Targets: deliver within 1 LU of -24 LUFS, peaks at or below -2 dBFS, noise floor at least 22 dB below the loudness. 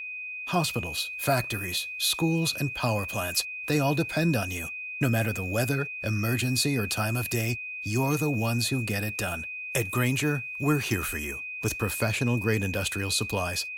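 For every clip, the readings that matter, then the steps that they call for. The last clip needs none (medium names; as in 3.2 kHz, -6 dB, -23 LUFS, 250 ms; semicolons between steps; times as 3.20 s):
steady tone 2.5 kHz; tone level -34 dBFS; loudness -27.5 LUFS; peak level -12.0 dBFS; loudness target -24.0 LUFS
-> band-stop 2.5 kHz, Q 30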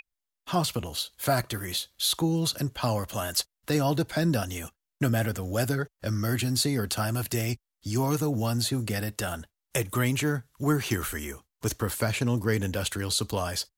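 steady tone not found; loudness -28.5 LUFS; peak level -12.5 dBFS; loudness target -24.0 LUFS
-> trim +4.5 dB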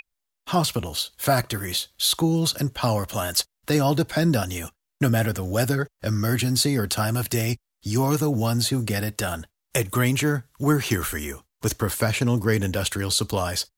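loudness -24.0 LUFS; peak level -8.0 dBFS; noise floor -81 dBFS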